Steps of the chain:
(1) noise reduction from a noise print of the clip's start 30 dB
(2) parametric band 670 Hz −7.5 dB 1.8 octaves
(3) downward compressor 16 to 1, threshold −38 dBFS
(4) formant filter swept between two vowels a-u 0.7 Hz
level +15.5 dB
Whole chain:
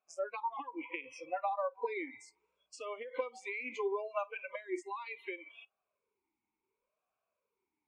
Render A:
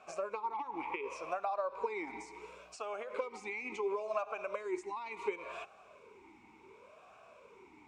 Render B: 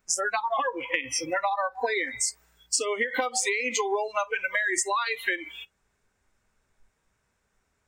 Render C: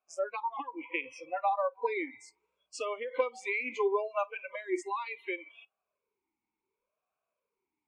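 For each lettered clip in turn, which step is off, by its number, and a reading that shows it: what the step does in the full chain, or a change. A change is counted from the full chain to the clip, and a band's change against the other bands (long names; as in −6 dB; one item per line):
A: 1, change in momentary loudness spread +11 LU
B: 4, 8 kHz band +19.0 dB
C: 3, average gain reduction 4.0 dB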